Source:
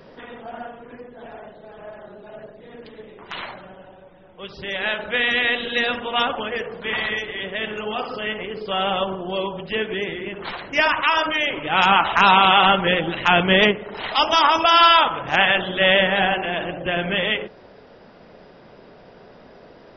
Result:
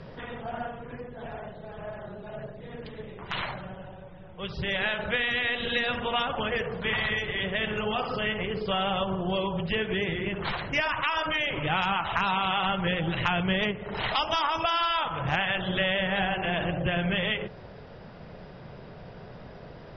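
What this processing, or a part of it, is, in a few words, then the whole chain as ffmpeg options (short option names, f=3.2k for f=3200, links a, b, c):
jukebox: -af "lowpass=5.7k,lowshelf=f=190:t=q:w=1.5:g=8.5,acompressor=threshold=-24dB:ratio=6"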